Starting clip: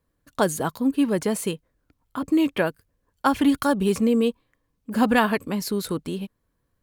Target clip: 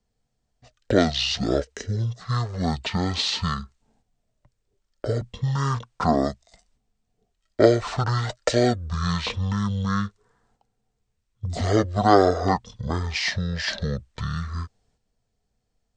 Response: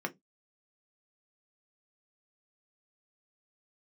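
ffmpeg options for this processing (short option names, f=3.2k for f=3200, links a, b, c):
-filter_complex "[0:a]agate=range=-7dB:threshold=-49dB:ratio=16:detection=peak,acrossover=split=790|2200[a][b][c];[a]acompressor=threshold=-33dB:ratio=4[d];[d][b][c]amix=inputs=3:normalize=0,asetrate=18846,aresample=44100,volume=6dB"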